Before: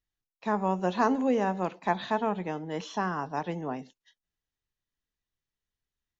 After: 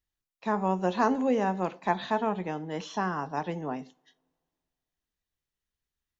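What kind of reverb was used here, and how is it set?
two-slope reverb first 0.3 s, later 2.2 s, from -27 dB, DRR 16 dB

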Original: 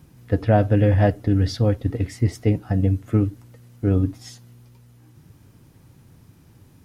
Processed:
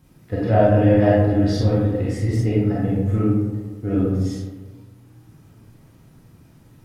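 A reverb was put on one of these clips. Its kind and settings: digital reverb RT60 1.4 s, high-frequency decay 0.4×, pre-delay 0 ms, DRR -7.5 dB; gain -6 dB

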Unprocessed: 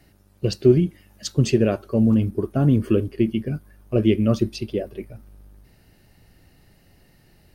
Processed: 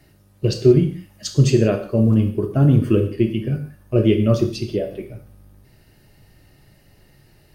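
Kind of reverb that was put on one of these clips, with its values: non-linear reverb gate 0.21 s falling, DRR 4 dB; gain +1 dB

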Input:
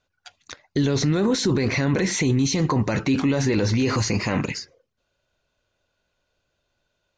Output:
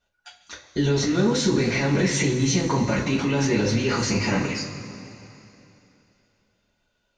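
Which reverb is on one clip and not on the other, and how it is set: two-slope reverb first 0.24 s, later 3 s, from -18 dB, DRR -7.5 dB; gain -7 dB

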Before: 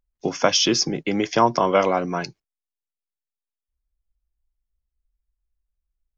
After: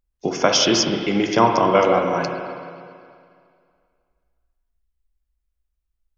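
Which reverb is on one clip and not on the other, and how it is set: spring tank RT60 2.2 s, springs 35/53/59 ms, chirp 75 ms, DRR 2.5 dB; gain +1 dB

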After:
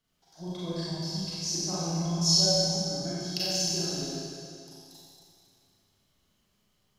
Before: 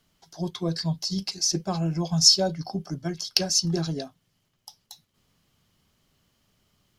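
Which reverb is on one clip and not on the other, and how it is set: Schroeder reverb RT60 2.4 s, combs from 30 ms, DRR -9.5 dB; gain -13.5 dB

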